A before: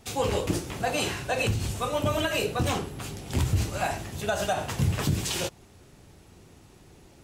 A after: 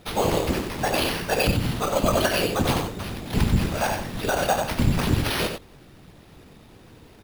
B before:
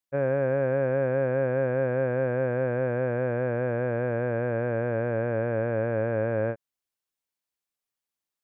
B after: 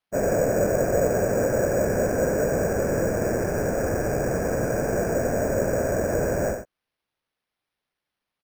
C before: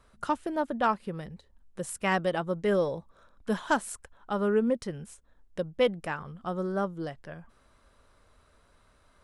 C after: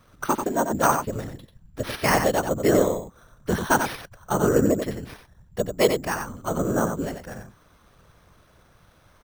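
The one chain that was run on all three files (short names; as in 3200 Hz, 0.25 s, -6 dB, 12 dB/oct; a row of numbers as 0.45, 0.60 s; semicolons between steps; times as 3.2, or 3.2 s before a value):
whisperiser; on a send: echo 91 ms -7 dB; on the sum: careless resampling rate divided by 6×, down none, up hold; match loudness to -24 LUFS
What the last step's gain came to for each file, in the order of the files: +4.0, +2.0, +5.5 dB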